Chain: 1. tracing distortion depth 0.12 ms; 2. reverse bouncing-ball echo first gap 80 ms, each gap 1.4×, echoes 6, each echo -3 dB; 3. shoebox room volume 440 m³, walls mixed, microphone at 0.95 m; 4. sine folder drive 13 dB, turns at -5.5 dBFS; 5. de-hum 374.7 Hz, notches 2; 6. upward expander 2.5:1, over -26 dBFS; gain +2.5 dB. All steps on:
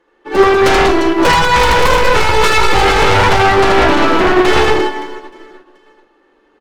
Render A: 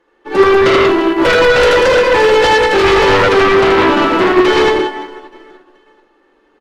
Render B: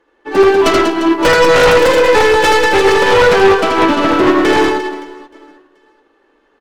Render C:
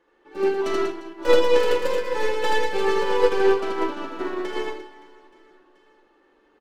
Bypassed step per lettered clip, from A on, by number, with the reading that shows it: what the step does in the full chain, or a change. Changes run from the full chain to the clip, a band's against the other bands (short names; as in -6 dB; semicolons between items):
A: 1, 125 Hz band -5.0 dB; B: 3, 125 Hz band -6.5 dB; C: 4, crest factor change +8.5 dB